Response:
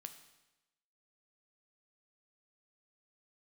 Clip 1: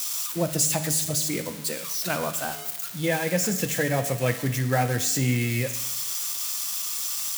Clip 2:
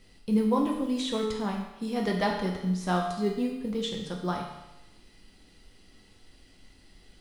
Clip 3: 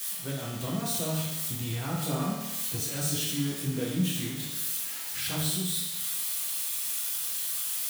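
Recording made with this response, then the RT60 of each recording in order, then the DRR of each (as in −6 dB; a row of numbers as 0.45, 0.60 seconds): 1; 1.0, 1.0, 1.0 seconds; 7.5, −0.5, −6.0 decibels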